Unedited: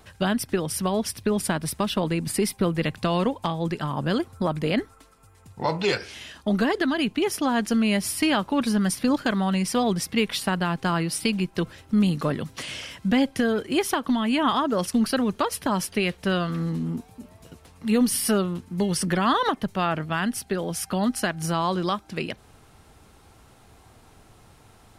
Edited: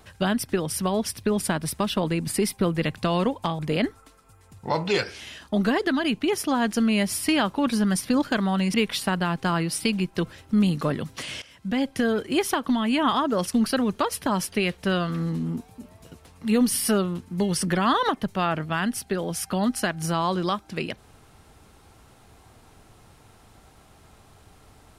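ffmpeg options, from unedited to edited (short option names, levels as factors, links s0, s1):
-filter_complex "[0:a]asplit=4[s0][s1][s2][s3];[s0]atrim=end=3.592[s4];[s1]atrim=start=4.528:end=9.682[s5];[s2]atrim=start=10.138:end=12.82,asetpts=PTS-STARTPTS,afade=t=out:st=2.678:d=0.004:c=hsin:silence=0.158489[s6];[s3]atrim=start=12.82,asetpts=PTS-STARTPTS,afade=t=in:d=0.65:silence=0.158489[s7];[s4][s5]acrossfade=d=0.004:c1=hsin:c2=hsin[s8];[s6][s7]concat=n=2:v=0:a=1[s9];[s8][s9]acrossfade=d=0.004:c1=hsin:c2=hsin"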